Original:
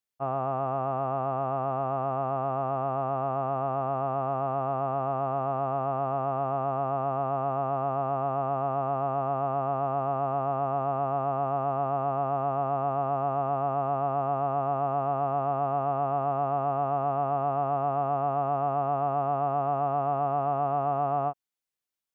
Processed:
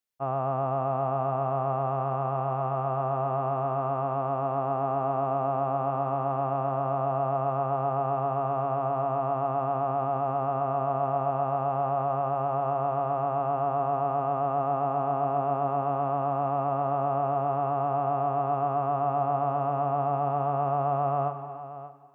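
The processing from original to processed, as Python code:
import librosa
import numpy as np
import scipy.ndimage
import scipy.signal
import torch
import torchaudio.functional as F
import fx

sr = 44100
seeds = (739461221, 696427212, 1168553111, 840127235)

y = x + 10.0 ** (-13.5 / 20.0) * np.pad(x, (int(583 * sr / 1000.0), 0))[:len(x)]
y = fx.rev_gated(y, sr, seeds[0], gate_ms=370, shape='flat', drr_db=10.0)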